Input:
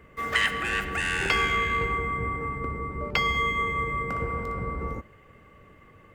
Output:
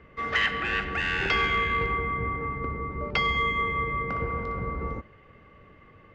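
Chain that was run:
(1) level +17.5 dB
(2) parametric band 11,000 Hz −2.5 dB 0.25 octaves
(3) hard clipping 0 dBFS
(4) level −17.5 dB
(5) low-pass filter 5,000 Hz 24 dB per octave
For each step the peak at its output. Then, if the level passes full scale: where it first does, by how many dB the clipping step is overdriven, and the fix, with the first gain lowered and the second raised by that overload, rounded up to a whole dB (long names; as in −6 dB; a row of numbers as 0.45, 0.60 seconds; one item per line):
+9.5, +9.5, 0.0, −17.5, −15.5 dBFS
step 1, 9.5 dB
step 1 +7.5 dB, step 4 −7.5 dB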